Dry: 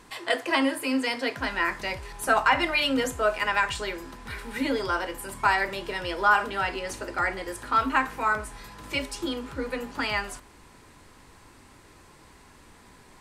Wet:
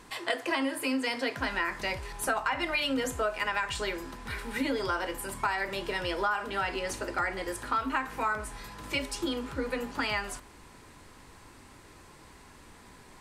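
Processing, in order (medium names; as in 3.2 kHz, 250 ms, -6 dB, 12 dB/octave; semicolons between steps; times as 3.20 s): compression 6:1, threshold -26 dBFS, peak gain reduction 10.5 dB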